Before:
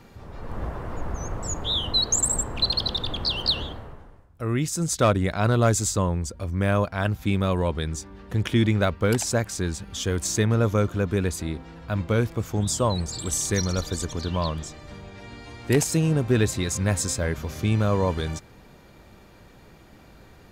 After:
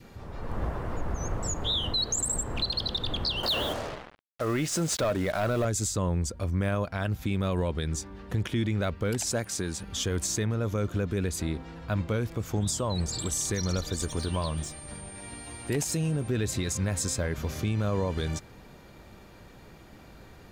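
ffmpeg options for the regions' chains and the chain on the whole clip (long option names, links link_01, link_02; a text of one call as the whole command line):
ffmpeg -i in.wav -filter_complex "[0:a]asettb=1/sr,asplit=3[link_01][link_02][link_03];[link_01]atrim=end=3.434[link_04];[link_02]atrim=start=3.43:end=5.65,asetpts=PTS-STARTPTS,afade=type=in:duration=0.004:curve=qsin,afade=type=out:start_time=2.216:duration=0.004:curve=qsin,equalizer=frequency=610:width=6.2:gain=6,asplit=2[link_05][link_06];[link_06]highpass=frequency=720:poles=1,volume=19dB,asoftclip=type=tanh:threshold=-7dB[link_07];[link_05][link_07]amix=inputs=2:normalize=0,lowpass=frequency=1700:poles=1,volume=-6dB,acrusher=bits=5:mix=0:aa=0.5[link_08];[link_03]atrim=start=5.646[link_09];[link_04][link_08]acrossfade=duration=0.004:curve1=hsin:curve2=qsin[link_10];[link_10][link_09]acrossfade=duration=0.004:curve1=qsin:curve2=hsin,asettb=1/sr,asplit=3[link_11][link_12][link_13];[link_11]atrim=end=9.324[link_14];[link_12]atrim=start=9.32:end=9.83,asetpts=PTS-STARTPTS,afade=type=in:duration=0.004:curve=qsin,afade=type=out:start_time=0.506:duration=0.004:curve=qsin,highpass=frequency=140:poles=1,aeval=exprs='val(0)+0.00224*sin(2*PI*9300*n/s)':channel_layout=same,volume=15.5dB,asoftclip=hard,volume=-15.5dB[link_15];[link_13]atrim=start=9.826[link_16];[link_14][link_15]acrossfade=duration=0.004:curve1=hsin:curve2=qsin[link_17];[link_17][link_16]acrossfade=duration=0.004:curve1=qsin:curve2=hsin,asettb=1/sr,asplit=3[link_18][link_19][link_20];[link_18]atrim=end=13.974[link_21];[link_19]atrim=start=13.97:end=16.28,asetpts=PTS-STARTPTS,afade=type=in:duration=0.004:curve=qsin,afade=type=out:start_time=2.306:duration=0.004:curve=qsin,aeval=exprs='sgn(val(0))*max(abs(val(0))-0.00266,0)':channel_layout=same,asplit=2[link_22][link_23];[link_23]adelay=14,volume=-11dB[link_24];[link_22][link_24]amix=inputs=2:normalize=0,atrim=end_sample=101871,aeval=exprs='val(0)+0.00631*sin(2*PI*9000*n/s)':channel_layout=same[link_25];[link_20]atrim=start=16.276[link_26];[link_21][link_25]acrossfade=duration=0.004:curve1=hsin:curve2=qsin[link_27];[link_27][link_26]acrossfade=duration=0.004:curve1=qsin:curve2=hsin,adynamicequalizer=threshold=0.01:dfrequency=990:dqfactor=1.5:tfrequency=990:tqfactor=1.5:attack=5:release=100:ratio=0.375:range=2.5:mode=cutabove:tftype=bell,alimiter=limit=-20dB:level=0:latency=1:release=115" out.wav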